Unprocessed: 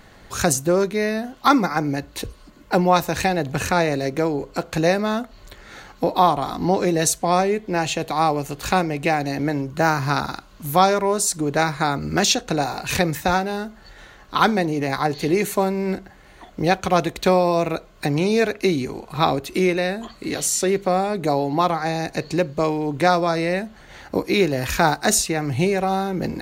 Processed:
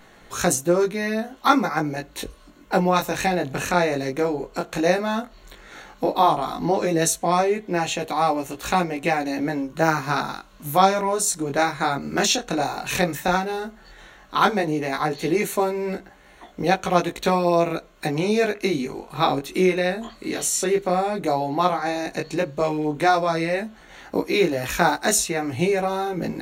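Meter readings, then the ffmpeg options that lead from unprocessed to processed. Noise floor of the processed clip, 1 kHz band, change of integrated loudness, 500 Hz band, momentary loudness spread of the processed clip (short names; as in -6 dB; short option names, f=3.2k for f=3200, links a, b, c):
-50 dBFS, -1.0 dB, -1.5 dB, -1.5 dB, 8 LU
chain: -af "equalizer=f=83:t=o:w=1.1:g=-12.5,bandreject=f=4.8k:w=6.7,flanger=delay=17:depth=5.8:speed=0.12,volume=2dB"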